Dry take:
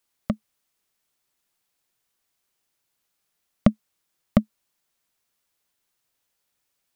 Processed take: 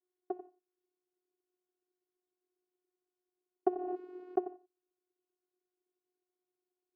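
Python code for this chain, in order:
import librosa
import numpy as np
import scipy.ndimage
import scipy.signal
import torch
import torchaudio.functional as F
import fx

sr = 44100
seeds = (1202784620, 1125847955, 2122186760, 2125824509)

p1 = fx.ladder_bandpass(x, sr, hz=360.0, resonance_pct=60)
p2 = p1 + fx.echo_single(p1, sr, ms=91, db=-15.0, dry=0)
p3 = fx.rev_gated(p2, sr, seeds[0], gate_ms=200, shape='falling', drr_db=11.5)
p4 = fx.vocoder(p3, sr, bands=8, carrier='saw', carrier_hz=363.0)
p5 = fx.pre_swell(p4, sr, db_per_s=21.0, at=(3.69, 4.41))
y = p5 * 10.0 ** (3.0 / 20.0)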